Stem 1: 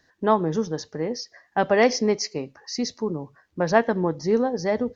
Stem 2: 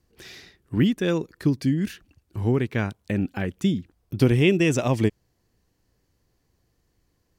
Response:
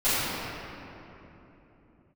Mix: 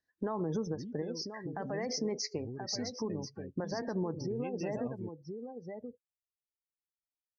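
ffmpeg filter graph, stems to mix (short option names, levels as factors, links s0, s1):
-filter_complex "[0:a]alimiter=limit=0.168:level=0:latency=1:release=36,acompressor=threshold=0.0398:ratio=16,volume=1.41,asplit=2[s0][s1];[s1]volume=0.2[s2];[1:a]acompressor=threshold=0.1:ratio=6,volume=0.119,asplit=2[s3][s4];[s4]apad=whole_len=218403[s5];[s0][s5]sidechaincompress=threshold=0.00501:ratio=8:attack=16:release=390[s6];[s2]aecho=0:1:1031:1[s7];[s6][s3][s7]amix=inputs=3:normalize=0,afftdn=nr=29:nf=-42,alimiter=level_in=1.19:limit=0.0631:level=0:latency=1:release=131,volume=0.841"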